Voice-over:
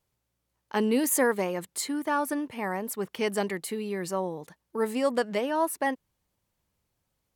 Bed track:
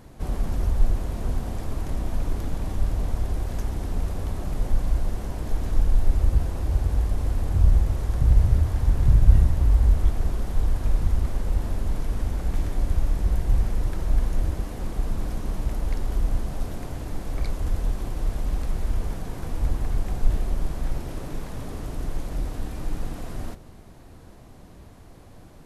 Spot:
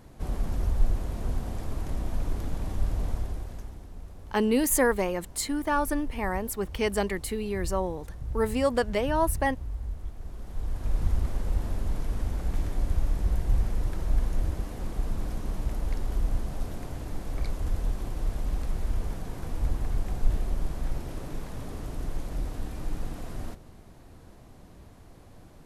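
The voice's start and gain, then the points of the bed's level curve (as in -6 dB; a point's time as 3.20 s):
3.60 s, +1.0 dB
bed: 3.11 s -3.5 dB
3.89 s -16.5 dB
10.17 s -16.5 dB
11.05 s -3.5 dB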